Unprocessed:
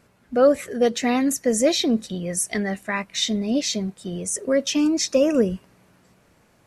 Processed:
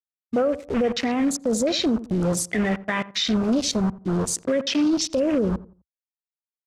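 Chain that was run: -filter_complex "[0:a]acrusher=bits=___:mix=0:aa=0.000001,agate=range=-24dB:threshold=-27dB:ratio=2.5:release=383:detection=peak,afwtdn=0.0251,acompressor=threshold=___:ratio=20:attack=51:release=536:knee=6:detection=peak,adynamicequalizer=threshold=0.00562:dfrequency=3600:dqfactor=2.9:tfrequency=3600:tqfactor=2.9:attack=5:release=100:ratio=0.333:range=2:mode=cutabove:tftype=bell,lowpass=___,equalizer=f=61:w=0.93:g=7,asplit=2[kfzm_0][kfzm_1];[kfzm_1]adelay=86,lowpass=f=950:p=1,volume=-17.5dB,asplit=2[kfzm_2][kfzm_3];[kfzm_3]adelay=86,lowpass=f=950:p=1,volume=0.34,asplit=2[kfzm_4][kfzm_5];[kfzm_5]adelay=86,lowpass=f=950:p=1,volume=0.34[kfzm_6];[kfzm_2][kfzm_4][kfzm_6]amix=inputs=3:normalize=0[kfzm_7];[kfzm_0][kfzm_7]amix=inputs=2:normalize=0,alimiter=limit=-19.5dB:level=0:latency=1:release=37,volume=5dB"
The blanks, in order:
4, -20dB, 7400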